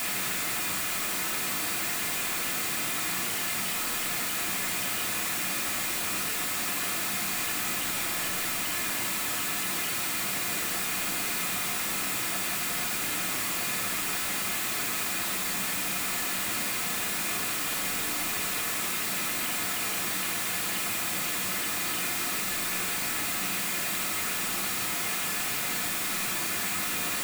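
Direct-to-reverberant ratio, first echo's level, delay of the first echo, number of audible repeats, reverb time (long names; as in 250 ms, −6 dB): −3.0 dB, no echo audible, no echo audible, no echo audible, 0.65 s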